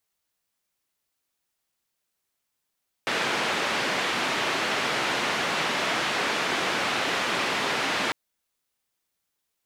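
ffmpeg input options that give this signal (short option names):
-f lavfi -i "anoisesrc=c=white:d=5.05:r=44100:seed=1,highpass=f=190,lowpass=f=2600,volume=-12.5dB"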